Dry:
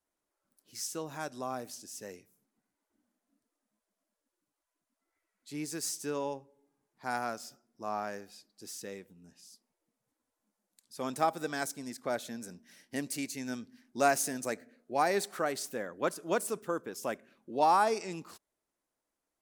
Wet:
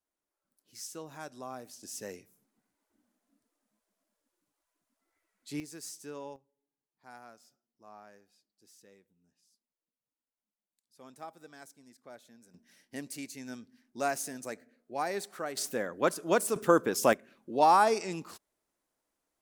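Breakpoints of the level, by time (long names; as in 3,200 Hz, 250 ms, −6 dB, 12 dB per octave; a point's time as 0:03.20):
−5 dB
from 0:01.83 +3 dB
from 0:05.60 −8 dB
from 0:06.36 −16.5 dB
from 0:12.54 −5 dB
from 0:15.57 +4 dB
from 0:16.56 +11 dB
from 0:17.13 +3 dB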